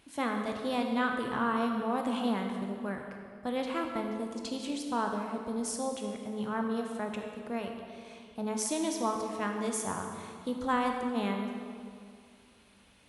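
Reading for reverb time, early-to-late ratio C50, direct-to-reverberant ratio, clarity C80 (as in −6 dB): 2.2 s, 4.0 dB, 2.5 dB, 5.0 dB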